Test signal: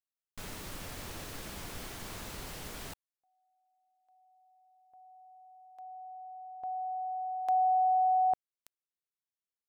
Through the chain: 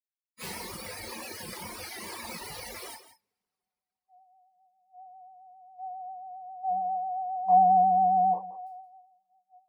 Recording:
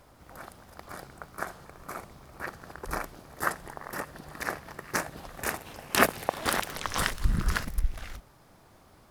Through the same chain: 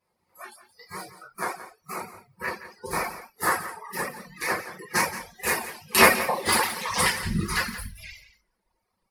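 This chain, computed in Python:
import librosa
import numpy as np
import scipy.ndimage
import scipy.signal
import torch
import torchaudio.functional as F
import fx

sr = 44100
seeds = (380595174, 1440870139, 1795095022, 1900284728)

p1 = fx.octave_divider(x, sr, octaves=2, level_db=-5.0)
p2 = scipy.signal.sosfilt(scipy.signal.butter(2, 66.0, 'highpass', fs=sr, output='sos'), p1)
p3 = p2 + 0.36 * np.pad(p2, (int(5.5 * sr / 1000.0), 0))[:len(p2)]
p4 = fx.rev_double_slope(p3, sr, seeds[0], early_s=0.59, late_s=3.0, knee_db=-14, drr_db=-9.0)
p5 = fx.dereverb_blind(p4, sr, rt60_s=1.7)
p6 = fx.ripple_eq(p5, sr, per_octave=0.89, db=7)
p7 = fx.noise_reduce_blind(p6, sr, reduce_db=24)
p8 = p7 + fx.echo_single(p7, sr, ms=172, db=-13.5, dry=0)
p9 = fx.vibrato(p8, sr, rate_hz=7.4, depth_cents=47.0)
p10 = fx.low_shelf(p9, sr, hz=170.0, db=-9.0)
y = p10 * librosa.db_to_amplitude(-1.5)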